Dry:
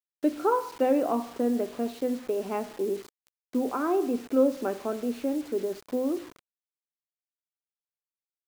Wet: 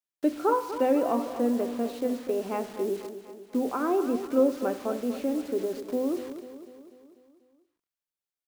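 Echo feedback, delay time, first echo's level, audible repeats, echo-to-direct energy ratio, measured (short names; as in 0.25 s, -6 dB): 55%, 0.246 s, -11.5 dB, 5, -10.0 dB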